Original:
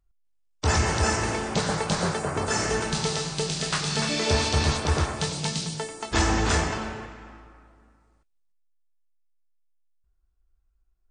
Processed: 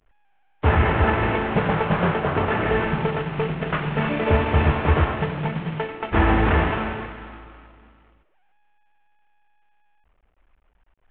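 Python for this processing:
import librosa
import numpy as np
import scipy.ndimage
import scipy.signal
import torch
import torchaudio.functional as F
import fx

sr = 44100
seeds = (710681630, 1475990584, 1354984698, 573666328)

y = fx.cvsd(x, sr, bps=16000)
y = F.gain(torch.from_numpy(y), 6.5).numpy()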